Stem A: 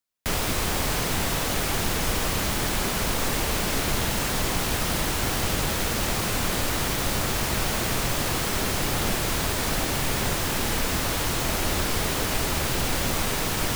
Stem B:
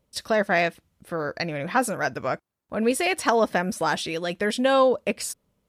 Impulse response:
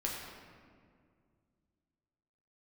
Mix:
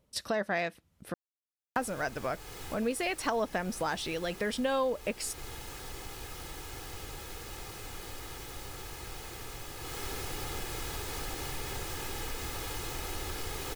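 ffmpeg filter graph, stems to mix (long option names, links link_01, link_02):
-filter_complex "[0:a]aecho=1:1:2.4:0.58,adelay=1500,volume=-11.5dB,afade=type=in:start_time=9.78:duration=0.29:silence=0.421697[link_01];[1:a]volume=-0.5dB,asplit=3[link_02][link_03][link_04];[link_02]atrim=end=1.14,asetpts=PTS-STARTPTS,afade=type=out:start_time=1.136:duration=0.004:curve=hsin[link_05];[link_03]atrim=start=1.14:end=1.76,asetpts=PTS-STARTPTS,volume=0[link_06];[link_04]atrim=start=1.76,asetpts=PTS-STARTPTS,afade=type=in:duration=0.004:curve=hsin[link_07];[link_05][link_06][link_07]concat=n=3:v=0:a=1[link_08];[link_01][link_08]amix=inputs=2:normalize=0,acompressor=threshold=-35dB:ratio=2"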